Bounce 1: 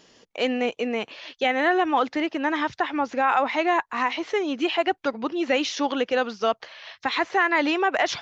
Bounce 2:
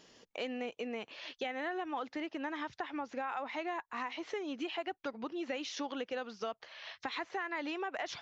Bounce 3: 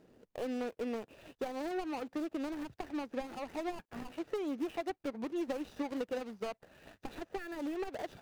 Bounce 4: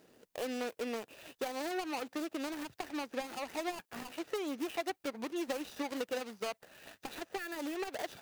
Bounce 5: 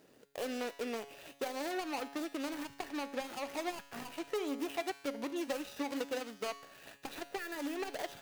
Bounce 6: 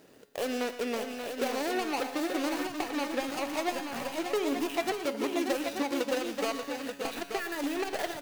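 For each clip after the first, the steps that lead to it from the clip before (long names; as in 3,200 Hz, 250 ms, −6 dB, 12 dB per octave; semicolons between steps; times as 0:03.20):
downward compressor 3 to 1, threshold −33 dBFS, peak gain reduction 12.5 dB; level −5.5 dB
running median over 41 samples; level +4 dB
spectral tilt +2.5 dB per octave; level +2.5 dB
tuned comb filter 140 Hz, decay 1 s, harmonics all, mix 70%; level +9 dB
multi-tap delay 117/584/882 ms −13.5/−7/−7 dB; level +6 dB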